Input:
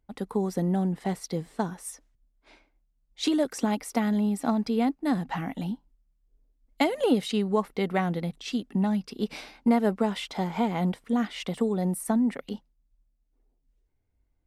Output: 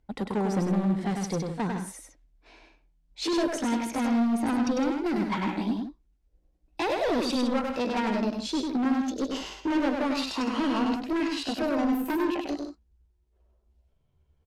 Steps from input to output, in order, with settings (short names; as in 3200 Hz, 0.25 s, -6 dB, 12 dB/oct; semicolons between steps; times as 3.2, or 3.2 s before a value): gliding pitch shift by +7 st starting unshifted; notch 1200 Hz, Q 11; in parallel at -3 dB: limiter -21.5 dBFS, peak gain reduction 10.5 dB; on the sum: hard clip -24.5 dBFS, distortion -8 dB; air absorption 52 m; on a send: loudspeakers at several distances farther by 34 m -4 dB, 55 m -10 dB